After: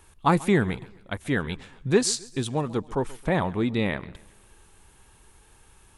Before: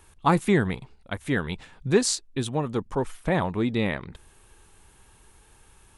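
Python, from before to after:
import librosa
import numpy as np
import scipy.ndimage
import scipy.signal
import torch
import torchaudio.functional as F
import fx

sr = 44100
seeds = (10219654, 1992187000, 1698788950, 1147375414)

y = fx.echo_warbled(x, sr, ms=135, feedback_pct=42, rate_hz=2.8, cents=101, wet_db=-21)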